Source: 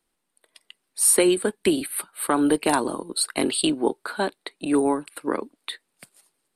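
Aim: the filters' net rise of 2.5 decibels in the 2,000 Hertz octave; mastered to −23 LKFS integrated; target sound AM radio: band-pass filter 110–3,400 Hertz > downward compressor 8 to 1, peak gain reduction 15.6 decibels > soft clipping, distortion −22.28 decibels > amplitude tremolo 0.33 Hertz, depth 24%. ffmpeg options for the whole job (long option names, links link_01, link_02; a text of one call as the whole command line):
ffmpeg -i in.wav -af "highpass=110,lowpass=3400,equalizer=frequency=2000:width_type=o:gain=4,acompressor=threshold=-30dB:ratio=8,asoftclip=threshold=-19.5dB,tremolo=f=0.33:d=0.24,volume=14.5dB" out.wav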